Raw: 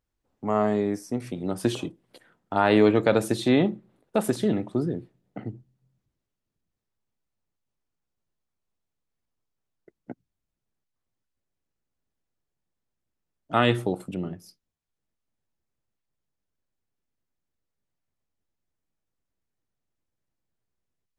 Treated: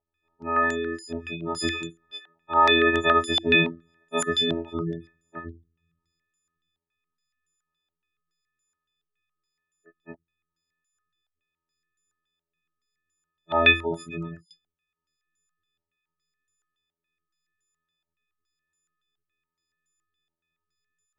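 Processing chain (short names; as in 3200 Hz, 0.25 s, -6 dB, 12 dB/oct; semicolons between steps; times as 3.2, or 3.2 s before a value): frequency quantiser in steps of 6 st; robotiser 83.5 Hz; spectral gate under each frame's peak -25 dB strong; stepped low-pass 7.1 Hz 750–7300 Hz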